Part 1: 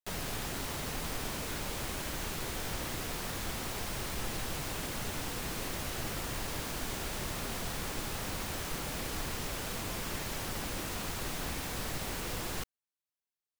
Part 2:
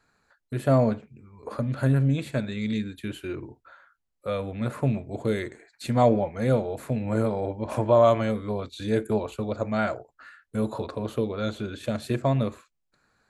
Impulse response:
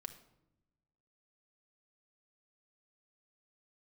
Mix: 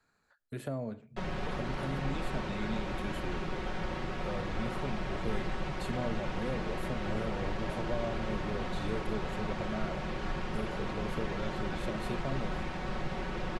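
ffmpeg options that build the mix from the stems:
-filter_complex "[0:a]aemphasis=mode=reproduction:type=75kf,aecho=1:1:5.4:0.66,adynamicsmooth=sensitivity=3:basefreq=4200,adelay=1100,volume=1.26[s0];[1:a]acrossover=split=250|520[s1][s2][s3];[s1]acompressor=threshold=0.0178:ratio=4[s4];[s2]acompressor=threshold=0.0178:ratio=4[s5];[s3]acompressor=threshold=0.01:ratio=4[s6];[s4][s5][s6]amix=inputs=3:normalize=0,volume=0.422,asplit=2[s7][s8];[s8]volume=0.266[s9];[2:a]atrim=start_sample=2205[s10];[s9][s10]afir=irnorm=-1:irlink=0[s11];[s0][s7][s11]amix=inputs=3:normalize=0"

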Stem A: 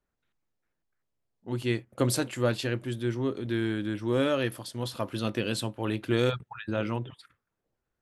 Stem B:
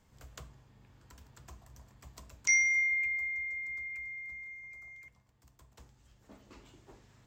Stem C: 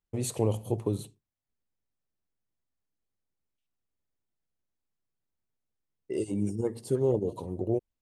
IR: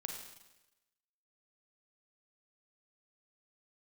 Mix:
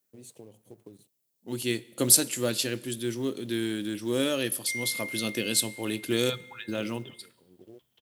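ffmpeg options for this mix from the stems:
-filter_complex "[0:a]aemphasis=mode=production:type=75kf,volume=1.12,asplit=3[s0][s1][s2];[s1]volume=0.2[s3];[1:a]lowpass=f=3200:t=q:w=10,adelay=2200,volume=0.398[s4];[2:a]acompressor=threshold=0.0398:ratio=6,aeval=exprs='sgn(val(0))*max(abs(val(0))-0.00299,0)':c=same,volume=0.282[s5];[s2]apad=whole_len=353254[s6];[s5][s6]sidechaincompress=threshold=0.0112:ratio=8:attack=16:release=755[s7];[3:a]atrim=start_sample=2205[s8];[s3][s8]afir=irnorm=-1:irlink=0[s9];[s0][s4][s7][s9]amix=inputs=4:normalize=0,highpass=190,equalizer=f=1100:t=o:w=2.1:g=-9,acrusher=bits=7:mode=log:mix=0:aa=0.000001"

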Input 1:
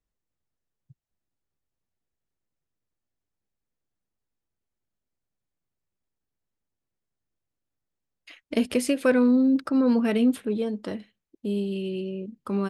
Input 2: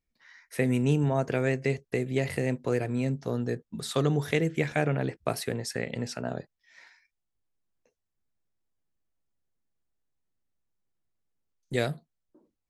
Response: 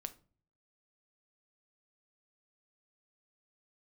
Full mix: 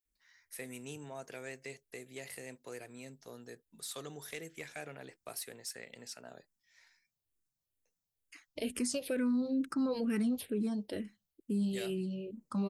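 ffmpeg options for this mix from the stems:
-filter_complex "[0:a]bass=f=250:g=5,treble=f=4000:g=10,asplit=2[s0][s1];[s1]afreqshift=-2.2[s2];[s0][s2]amix=inputs=2:normalize=1,adelay=50,volume=0.531[s3];[1:a]highpass=f=490:p=1,aemphasis=mode=production:type=75kf,asoftclip=type=tanh:threshold=0.133,volume=0.188[s4];[s3][s4]amix=inputs=2:normalize=0,alimiter=level_in=1.26:limit=0.0631:level=0:latency=1:release=77,volume=0.794"

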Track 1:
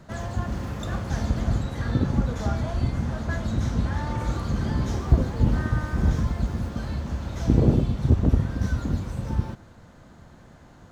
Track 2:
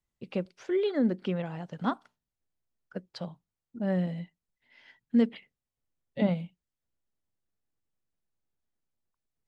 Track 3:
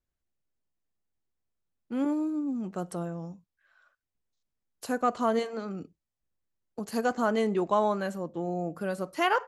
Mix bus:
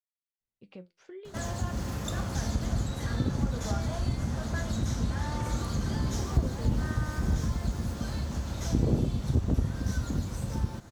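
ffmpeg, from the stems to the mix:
-filter_complex "[0:a]bass=f=250:g=0,treble=f=4000:g=10,adelay=1250,volume=0.841[s0];[1:a]acompressor=threshold=0.02:ratio=3,flanger=delay=8.2:depth=5.1:regen=67:speed=0.64:shape=triangular,adelay=400,volume=0.473[s1];[s0][s1]amix=inputs=2:normalize=0,acompressor=threshold=0.0282:ratio=1.5"

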